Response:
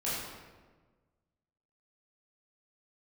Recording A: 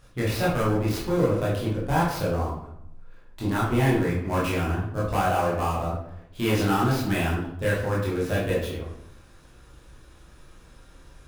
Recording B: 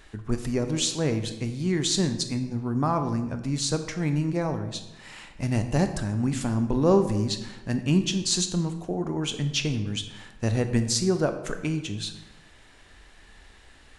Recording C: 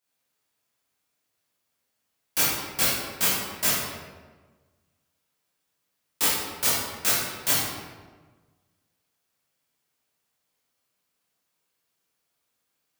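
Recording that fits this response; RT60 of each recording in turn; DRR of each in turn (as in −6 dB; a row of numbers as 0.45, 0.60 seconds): C; 0.75, 1.0, 1.4 seconds; −7.0, 7.5, −10.0 decibels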